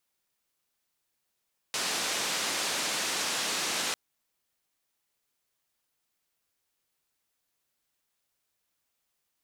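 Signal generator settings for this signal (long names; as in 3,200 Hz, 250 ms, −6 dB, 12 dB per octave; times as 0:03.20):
band-limited noise 220–6,800 Hz, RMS −31 dBFS 2.20 s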